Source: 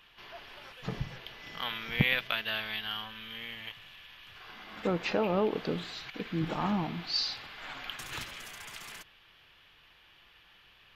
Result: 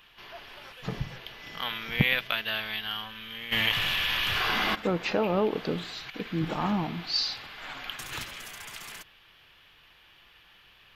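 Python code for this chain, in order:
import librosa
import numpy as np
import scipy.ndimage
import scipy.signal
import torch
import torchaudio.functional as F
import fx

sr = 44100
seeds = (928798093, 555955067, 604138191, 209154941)

y = fx.high_shelf(x, sr, hz=11000.0, db=5.0)
y = fx.env_flatten(y, sr, amount_pct=70, at=(3.51, 4.74), fade=0.02)
y = y * librosa.db_to_amplitude(2.5)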